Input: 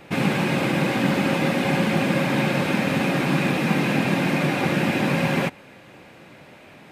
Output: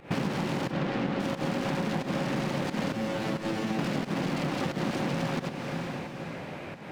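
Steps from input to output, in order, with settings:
phase distortion by the signal itself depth 0.56 ms
0:00.71–0:01.20: low-pass filter 3,900 Hz 12 dB per octave
0:02.92–0:03.79: tuned comb filter 110 Hz, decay 0.32 s, harmonics all, mix 90%
fake sidechain pumping 89 BPM, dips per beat 1, −18 dB, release 215 ms
in parallel at +2.5 dB: brickwall limiter −19 dBFS, peak gain reduction 10 dB
on the sum: high-shelf EQ 3,000 Hz −10 dB
feedback delay with all-pass diffusion 508 ms, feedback 43%, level −15.5 dB
downward compressor 6 to 1, threshold −27 dBFS, peak gain reduction 13.5 dB

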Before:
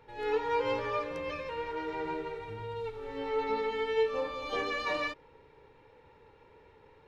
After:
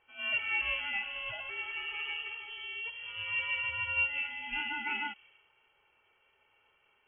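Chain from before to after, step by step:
voice inversion scrambler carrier 3,200 Hz
low-pass that shuts in the quiet parts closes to 1,200 Hz, open at −30.5 dBFS
level −2.5 dB

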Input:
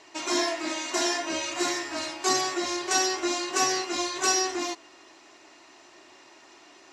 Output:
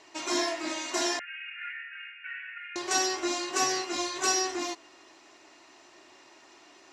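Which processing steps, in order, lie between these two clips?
0:01.19–0:02.76: Chebyshev band-pass filter 1,400–2,800 Hz, order 5
level −2.5 dB

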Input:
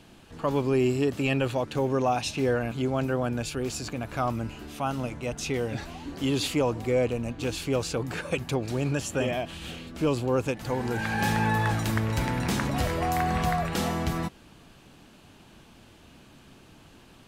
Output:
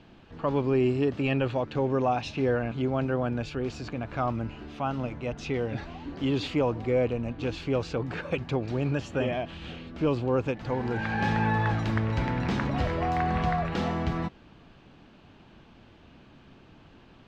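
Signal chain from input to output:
high-frequency loss of the air 200 metres

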